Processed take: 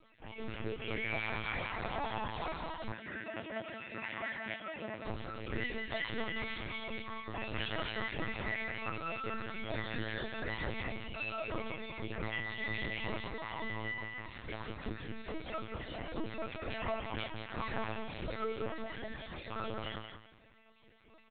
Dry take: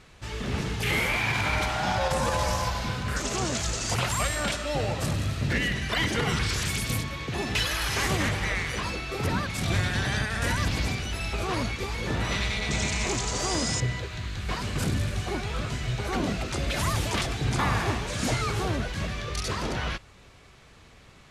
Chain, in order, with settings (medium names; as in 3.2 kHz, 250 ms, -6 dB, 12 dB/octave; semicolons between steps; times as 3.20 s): random holes in the spectrogram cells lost 25%; peaking EQ 440 Hz +4.5 dB 1.3 oct; harmonic tremolo 4.5 Hz, depth 50%, crossover 2 kHz; chord resonator A3 fifth, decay 0.23 s; hard clipper -38 dBFS, distortion -19 dB; doubling 31 ms -14 dB; feedback delay 184 ms, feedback 23%, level -7.5 dB; LPC vocoder at 8 kHz pitch kept; 2.92–5.05 s: cabinet simulation 160–3100 Hz, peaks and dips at 460 Hz -6 dB, 790 Hz -5 dB, 1.2 kHz -7 dB, 1.9 kHz +8 dB; trim +7 dB